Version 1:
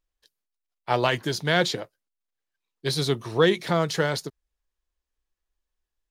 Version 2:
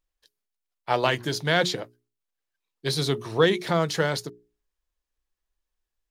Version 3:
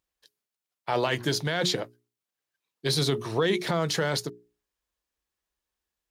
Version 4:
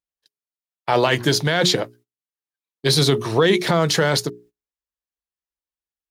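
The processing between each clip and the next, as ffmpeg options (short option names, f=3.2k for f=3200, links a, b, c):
-af "bandreject=f=60:t=h:w=6,bandreject=f=120:t=h:w=6,bandreject=f=180:t=h:w=6,bandreject=f=240:t=h:w=6,bandreject=f=300:t=h:w=6,bandreject=f=360:t=h:w=6,bandreject=f=420:t=h:w=6"
-af "alimiter=limit=-17dB:level=0:latency=1:release=35,highpass=72,volume=2dB"
-af "agate=range=-21dB:threshold=-55dB:ratio=16:detection=peak,volume=8.5dB"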